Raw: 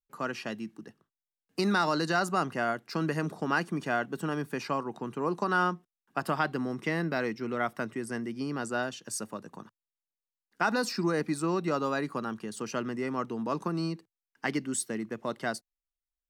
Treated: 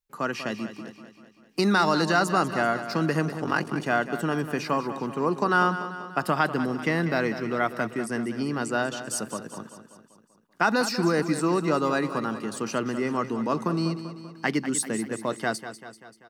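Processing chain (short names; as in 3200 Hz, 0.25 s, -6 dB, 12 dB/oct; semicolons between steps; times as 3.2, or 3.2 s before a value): 3.36–3.76 ring modulator 23 Hz; feedback echo 0.194 s, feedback 56%, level -11.5 dB; gain +5 dB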